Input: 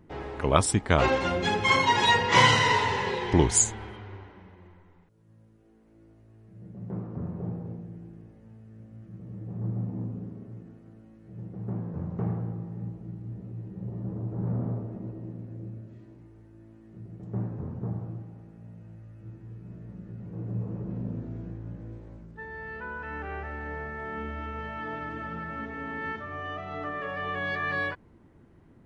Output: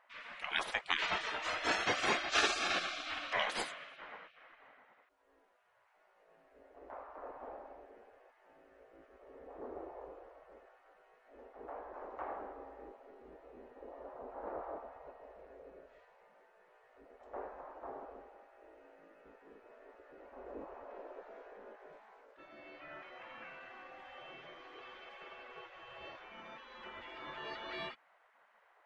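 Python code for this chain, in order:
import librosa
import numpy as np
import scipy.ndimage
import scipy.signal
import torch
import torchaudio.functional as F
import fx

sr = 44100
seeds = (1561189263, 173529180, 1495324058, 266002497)

y = fx.spec_gate(x, sr, threshold_db=-20, keep='weak')
y = fx.bass_treble(y, sr, bass_db=-10, treble_db=-13)
y = y * librosa.db_to_amplitude(4.5)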